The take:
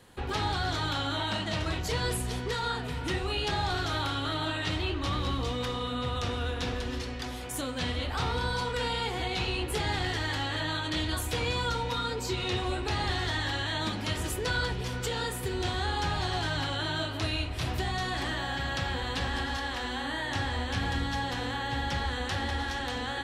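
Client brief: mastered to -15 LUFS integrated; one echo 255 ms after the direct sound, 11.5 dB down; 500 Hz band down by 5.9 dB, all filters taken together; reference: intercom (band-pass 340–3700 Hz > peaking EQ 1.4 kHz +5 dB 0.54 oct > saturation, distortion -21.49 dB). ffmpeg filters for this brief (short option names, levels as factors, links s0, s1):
-af "highpass=340,lowpass=3700,equalizer=f=500:t=o:g=-6,equalizer=f=1400:t=o:w=0.54:g=5,aecho=1:1:255:0.266,asoftclip=threshold=0.0631,volume=8.41"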